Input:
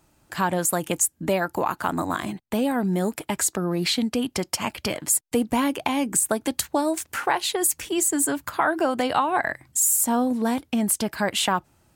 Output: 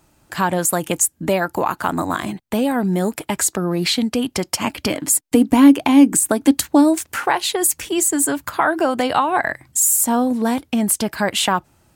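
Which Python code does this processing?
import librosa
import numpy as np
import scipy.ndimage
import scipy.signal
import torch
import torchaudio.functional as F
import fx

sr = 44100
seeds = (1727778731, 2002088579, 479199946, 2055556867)

y = fx.peak_eq(x, sr, hz=280.0, db=12.0, octaves=0.34, at=(4.61, 6.99))
y = F.gain(torch.from_numpy(y), 4.5).numpy()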